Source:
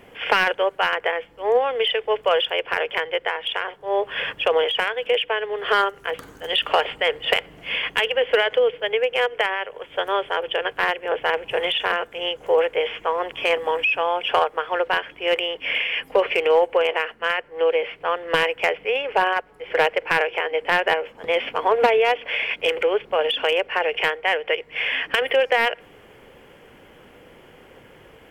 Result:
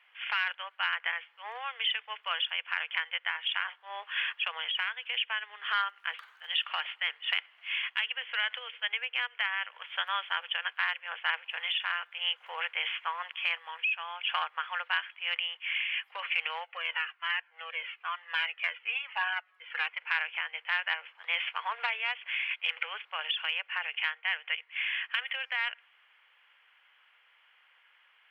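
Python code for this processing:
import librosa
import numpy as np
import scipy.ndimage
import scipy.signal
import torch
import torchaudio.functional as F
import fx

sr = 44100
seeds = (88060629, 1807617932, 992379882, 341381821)

y = fx.band_squash(x, sr, depth_pct=40, at=(8.43, 10.95))
y = fx.comb_cascade(y, sr, direction='falling', hz=1.1, at=(16.63, 19.99), fade=0.02)
y = scipy.signal.sosfilt(scipy.signal.butter(4, 1100.0, 'highpass', fs=sr, output='sos'), y)
y = fx.high_shelf_res(y, sr, hz=4600.0, db=-14.0, q=1.5)
y = fx.rider(y, sr, range_db=4, speed_s=0.5)
y = y * 10.0 ** (-8.5 / 20.0)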